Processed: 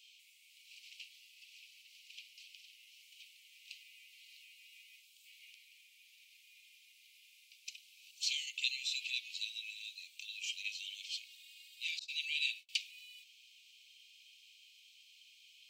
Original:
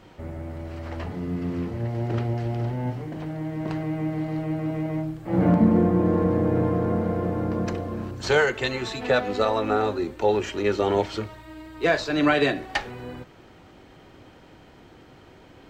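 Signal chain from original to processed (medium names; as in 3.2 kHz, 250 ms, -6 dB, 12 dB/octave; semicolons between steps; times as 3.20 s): in parallel at +0.5 dB: compression 6:1, threshold -34 dBFS, peak gain reduction 19 dB; 11.99–12.69 s: on the sum: gate -28 dBFS, range -33 dB; steep high-pass 2.4 kHz 96 dB/octave; trim -5 dB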